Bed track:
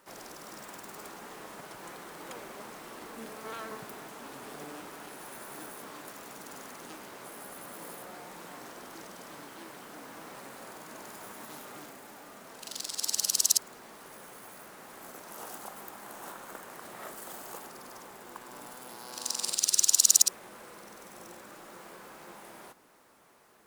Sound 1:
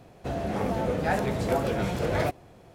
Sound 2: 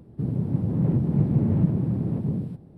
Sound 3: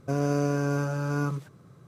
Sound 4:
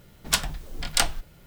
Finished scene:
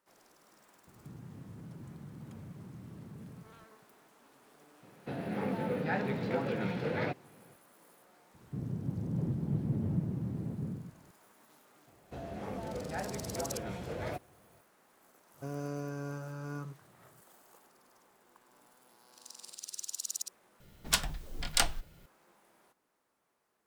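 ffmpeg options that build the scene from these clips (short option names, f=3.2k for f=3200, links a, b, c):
-filter_complex "[2:a]asplit=2[a][b];[1:a]asplit=2[c][d];[0:a]volume=-17.5dB[e];[a]acompressor=threshold=-34dB:ratio=6:attack=3.2:release=140:knee=1:detection=peak[f];[c]highpass=f=130:w=0.5412,highpass=f=130:w=1.3066,equalizer=f=350:t=q:w=4:g=-4,equalizer=f=660:t=q:w=4:g=-10,equalizer=f=1.1k:t=q:w=4:g=-6,equalizer=f=3.2k:t=q:w=4:g=-5,lowpass=f=4.1k:w=0.5412,lowpass=f=4.1k:w=1.3066[g];[d]highpass=47[h];[e]asplit=2[i][j];[i]atrim=end=20.604[k];[4:a]atrim=end=1.46,asetpts=PTS-STARTPTS,volume=-5.5dB[l];[j]atrim=start=22.056[m];[f]atrim=end=2.77,asetpts=PTS-STARTPTS,volume=-11.5dB,afade=t=in:d=0.004:c=hsin,afade=t=out:st=2.766:d=0.004:c=hsin,adelay=870[n];[g]atrim=end=2.74,asetpts=PTS-STARTPTS,volume=-3.5dB,afade=t=in:d=0.004:c=hsin,afade=t=out:st=2.736:d=0.004:c=hsin,adelay=4820[o];[b]atrim=end=2.77,asetpts=PTS-STARTPTS,volume=-11.5dB,afade=t=in:d=0.004:c=hsin,afade=t=out:st=2.766:d=0.004:c=hsin,adelay=367794S[p];[h]atrim=end=2.74,asetpts=PTS-STARTPTS,volume=-12dB,afade=t=in:d=0.004:c=hsin,afade=t=out:st=2.736:d=0.004:c=hsin,adelay=11870[q];[3:a]atrim=end=1.87,asetpts=PTS-STARTPTS,volume=-13dB,afade=t=in:d=0.004:c=hsin,afade=t=out:st=1.866:d=0.004:c=hsin,adelay=15340[r];[k][l]acrossfade=d=0.004:c1=hsin:c2=hsin[s];[s][m]acrossfade=d=0.004:c1=hsin:c2=hsin[t];[t][n][o][p][q][r]amix=inputs=6:normalize=0"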